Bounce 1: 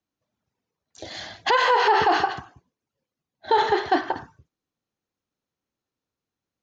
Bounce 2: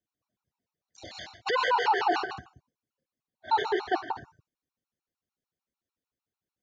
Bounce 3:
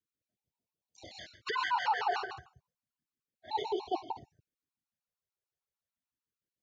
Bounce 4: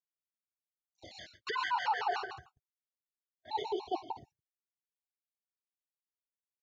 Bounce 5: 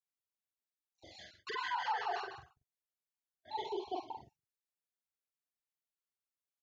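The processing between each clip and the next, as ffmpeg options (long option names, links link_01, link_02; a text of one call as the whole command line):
ffmpeg -i in.wav -af "afftfilt=real='re*gt(sin(2*PI*6.7*pts/sr)*(1-2*mod(floor(b*sr/1024/740),2)),0)':imag='im*gt(sin(2*PI*6.7*pts/sr)*(1-2*mod(floor(b*sr/1024/740),2)),0)':win_size=1024:overlap=0.75,volume=-3.5dB" out.wav
ffmpeg -i in.wav -af "afftfilt=real='re*(1-between(b*sr/1024,240*pow(1600/240,0.5+0.5*sin(2*PI*0.32*pts/sr))/1.41,240*pow(1600/240,0.5+0.5*sin(2*PI*0.32*pts/sr))*1.41))':imag='im*(1-between(b*sr/1024,240*pow(1600/240,0.5+0.5*sin(2*PI*0.32*pts/sr))/1.41,240*pow(1600/240,0.5+0.5*sin(2*PI*0.32*pts/sr))*1.41))':win_size=1024:overlap=0.75,volume=-5.5dB" out.wav
ffmpeg -i in.wav -af "agate=range=-23dB:threshold=-56dB:ratio=16:detection=peak,volume=-1.5dB" out.wav
ffmpeg -i in.wav -filter_complex "[0:a]asplit=2[link_01][link_02];[link_02]adelay=44,volume=-3dB[link_03];[link_01][link_03]amix=inputs=2:normalize=0,volume=-5.5dB" out.wav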